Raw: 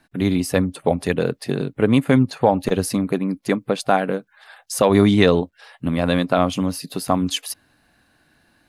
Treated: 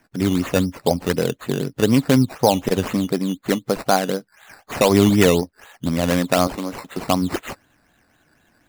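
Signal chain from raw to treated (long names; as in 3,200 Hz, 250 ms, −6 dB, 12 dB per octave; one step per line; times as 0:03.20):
hearing-aid frequency compression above 3,300 Hz 1.5 to 1
0:06.47–0:06.97: high-pass filter 330 Hz 12 dB per octave
sample-and-hold swept by an LFO 11×, swing 60% 4 Hz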